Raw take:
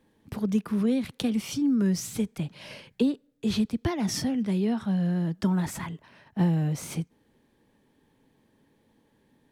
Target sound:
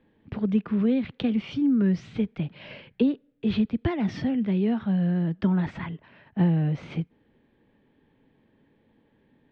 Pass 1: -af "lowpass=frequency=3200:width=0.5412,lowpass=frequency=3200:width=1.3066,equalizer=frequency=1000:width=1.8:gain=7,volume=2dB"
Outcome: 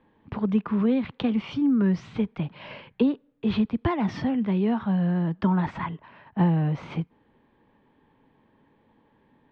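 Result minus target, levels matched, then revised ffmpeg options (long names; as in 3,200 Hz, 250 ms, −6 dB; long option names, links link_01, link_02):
1,000 Hz band +7.0 dB
-af "lowpass=frequency=3200:width=0.5412,lowpass=frequency=3200:width=1.3066,equalizer=frequency=1000:width=1.8:gain=-3.5,volume=2dB"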